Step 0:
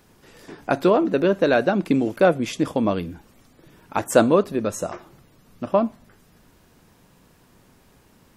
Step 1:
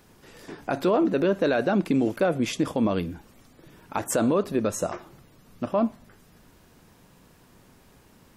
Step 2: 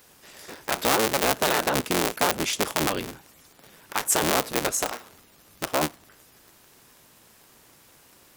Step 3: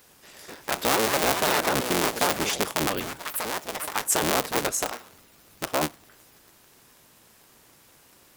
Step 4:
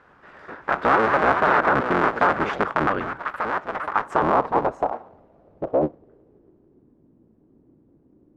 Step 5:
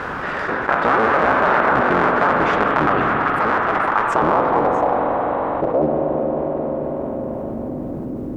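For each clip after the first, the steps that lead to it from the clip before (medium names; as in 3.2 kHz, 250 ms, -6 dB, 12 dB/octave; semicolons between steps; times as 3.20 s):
peak limiter -13.5 dBFS, peak gain reduction 11.5 dB
cycle switcher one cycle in 3, inverted; tilt EQ +2.5 dB/octave
ever faster or slower copies 464 ms, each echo +6 st, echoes 2, each echo -6 dB; trim -1 dB
low-pass sweep 1.4 kHz -> 300 Hz, 3.80–6.93 s; trim +3 dB
spring tank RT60 3.4 s, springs 40/44 ms, chirp 35 ms, DRR 4.5 dB; level flattener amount 70%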